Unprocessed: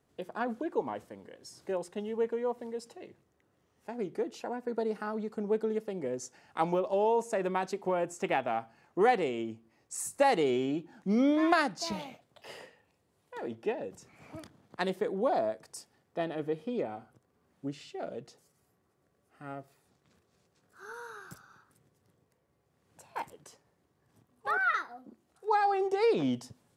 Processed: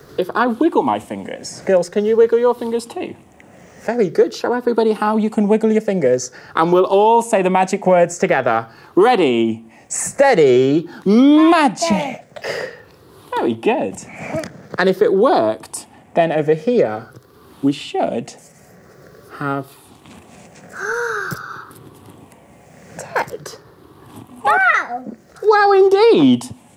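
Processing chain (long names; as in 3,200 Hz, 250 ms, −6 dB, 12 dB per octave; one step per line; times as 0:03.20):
rippled gain that drifts along the octave scale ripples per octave 0.58, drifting −0.47 Hz, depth 9 dB
boost into a limiter +19 dB
multiband upward and downward compressor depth 40%
level −1.5 dB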